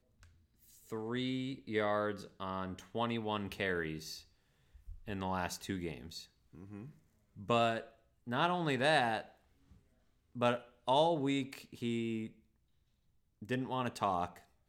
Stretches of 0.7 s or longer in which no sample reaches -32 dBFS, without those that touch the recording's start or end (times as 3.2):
3.93–5.1
5.92–7.5
9.2–10.41
12.18–13.51